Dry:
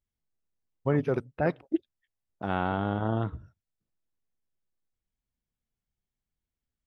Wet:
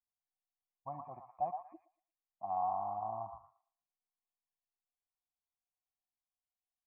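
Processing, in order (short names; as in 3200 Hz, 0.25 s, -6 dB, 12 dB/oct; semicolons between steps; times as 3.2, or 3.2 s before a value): vocal tract filter a; high shelf 3000 Hz -10.5 dB; fixed phaser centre 2200 Hz, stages 8; delay with a stepping band-pass 0.115 s, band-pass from 1100 Hz, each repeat 0.7 oct, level -2.5 dB; gain +3.5 dB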